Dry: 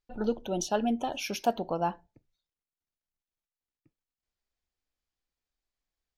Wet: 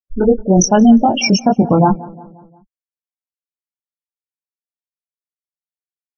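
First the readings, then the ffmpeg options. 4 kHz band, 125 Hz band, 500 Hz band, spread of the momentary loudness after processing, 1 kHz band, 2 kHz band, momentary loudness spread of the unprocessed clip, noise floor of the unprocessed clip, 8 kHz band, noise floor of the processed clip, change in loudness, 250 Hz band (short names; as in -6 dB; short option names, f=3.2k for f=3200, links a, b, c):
+17.0 dB, +25.0 dB, +16.0 dB, 6 LU, +15.5 dB, +15.5 dB, 4 LU, under -85 dBFS, +19.5 dB, under -85 dBFS, +18.5 dB, +22.0 dB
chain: -filter_complex "[0:a]bandreject=f=2.6k:w=15,acrusher=bits=7:dc=4:mix=0:aa=0.000001,afftfilt=real='re*gte(hypot(re,im),0.0501)':imag='im*gte(hypot(re,im),0.0501)':win_size=1024:overlap=0.75,asubboost=boost=11:cutoff=210,flanger=delay=19:depth=2.8:speed=2.5,aemphasis=mode=production:type=50fm,asplit=2[a][b];[b]adelay=177,lowpass=f=1.8k:p=1,volume=-21.5dB,asplit=2[c][d];[d]adelay=177,lowpass=f=1.8k:p=1,volume=0.55,asplit=2[e][f];[f]adelay=177,lowpass=f=1.8k:p=1,volume=0.55,asplit=2[g][h];[h]adelay=177,lowpass=f=1.8k:p=1,volume=0.55[i];[a][c][e][g][i]amix=inputs=5:normalize=0,alimiter=level_in=24dB:limit=-1dB:release=50:level=0:latency=1,volume=-1dB" -ar 24000 -c:a aac -b:a 48k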